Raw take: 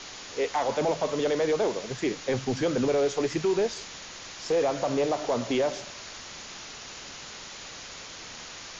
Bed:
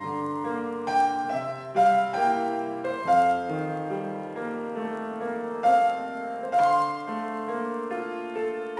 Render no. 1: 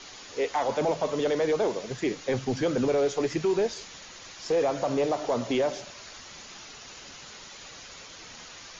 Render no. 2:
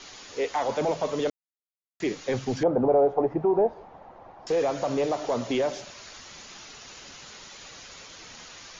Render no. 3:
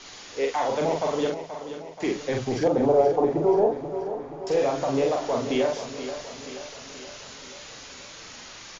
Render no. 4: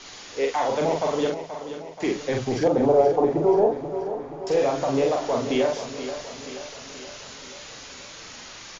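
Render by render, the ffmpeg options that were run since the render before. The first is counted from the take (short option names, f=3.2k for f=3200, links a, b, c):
-af "afftdn=nr=6:nf=-43"
-filter_complex "[0:a]asettb=1/sr,asplit=3[a][b][c];[a]atrim=end=2.634[d];[b]atrim=start=2.63:end=4.47,asetpts=PTS-STARTPTS,afade=t=in:d=0.004:c=qsin,afade=t=out:st=1.836:d=0.004:c=qsin,lowpass=f=790:t=q:w=3.8[e];[c]atrim=start=4.466[f];[d][e]acrossfade=d=0.004:c1=hsin:c2=qsin[g];[g][f]acrossfade=d=0.004:c1=qsin:c2=hsin,asplit=3[h][i][j];[h]atrim=end=1.3,asetpts=PTS-STARTPTS,afade=t=out:st=1.296:d=0.004:c=hsin[k];[i]atrim=start=1.3:end=2,asetpts=PTS-STARTPTS,volume=0[l];[j]atrim=start=2,asetpts=PTS-STARTPTS,afade=t=in:d=0.004:c=hsin[m];[k][l][m]concat=n=3:v=0:a=1"
-filter_complex "[0:a]asplit=2[a][b];[b]adelay=44,volume=-3dB[c];[a][c]amix=inputs=2:normalize=0,aecho=1:1:479|958|1437|1916|2395|2874:0.282|0.155|0.0853|0.0469|0.0258|0.0142"
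-af "volume=1.5dB"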